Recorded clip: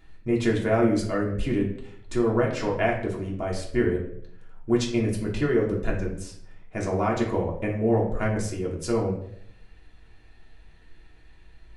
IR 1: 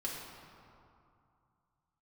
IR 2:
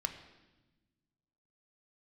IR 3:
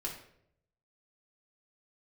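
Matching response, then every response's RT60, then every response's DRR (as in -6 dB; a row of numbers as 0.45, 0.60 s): 3; 2.5, 1.1, 0.70 s; -5.5, 6.0, -3.0 dB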